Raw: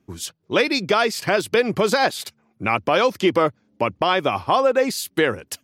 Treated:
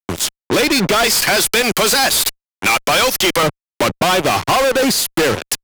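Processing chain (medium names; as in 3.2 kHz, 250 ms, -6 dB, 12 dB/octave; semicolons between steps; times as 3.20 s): 1.04–3.43 s: tilt EQ +4.5 dB/octave; fuzz box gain 34 dB, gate -33 dBFS; three bands compressed up and down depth 40%; trim +1 dB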